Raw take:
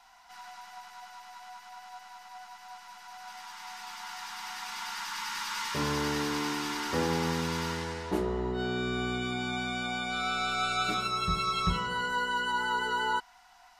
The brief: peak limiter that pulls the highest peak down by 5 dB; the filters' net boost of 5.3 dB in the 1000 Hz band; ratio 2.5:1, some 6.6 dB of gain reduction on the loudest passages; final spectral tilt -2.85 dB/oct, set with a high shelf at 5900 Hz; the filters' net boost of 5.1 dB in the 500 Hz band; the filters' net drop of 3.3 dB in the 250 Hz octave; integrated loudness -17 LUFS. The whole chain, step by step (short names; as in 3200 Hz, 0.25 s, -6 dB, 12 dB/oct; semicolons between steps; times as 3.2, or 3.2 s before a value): bell 250 Hz -8.5 dB; bell 500 Hz +8.5 dB; bell 1000 Hz +4.5 dB; high shelf 5900 Hz +3.5 dB; compressor 2.5:1, threshold -31 dBFS; gain +17.5 dB; limiter -7.5 dBFS